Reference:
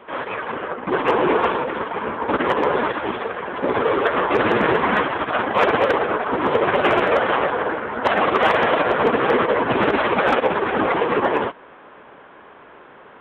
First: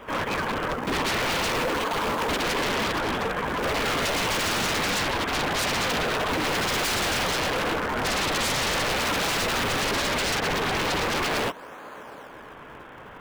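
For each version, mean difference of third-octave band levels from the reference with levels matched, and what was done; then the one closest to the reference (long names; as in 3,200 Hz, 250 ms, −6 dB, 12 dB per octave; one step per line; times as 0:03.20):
13.0 dB: high-shelf EQ 3,200 Hz +6.5 dB
notch filter 380 Hz, Q 12
in parallel at −7.5 dB: sample-and-hold swept by an LFO 39×, swing 160% 0.4 Hz
on the sum: wave folding −20.5 dBFS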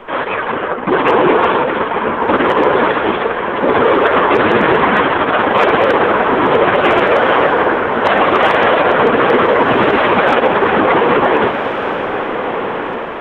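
3.0 dB: mains-hum notches 60/120 Hz
background noise brown −59 dBFS
feedback delay with all-pass diffusion 1,499 ms, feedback 41%, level −9.5 dB
boost into a limiter +10 dB
level −1 dB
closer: second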